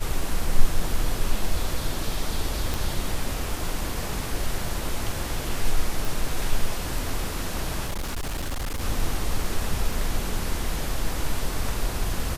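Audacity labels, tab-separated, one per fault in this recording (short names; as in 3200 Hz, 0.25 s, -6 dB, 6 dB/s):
2.740000	2.740000	pop
6.050000	6.050000	pop
7.860000	8.820000	clipped -25 dBFS
9.920000	9.920000	gap 2.7 ms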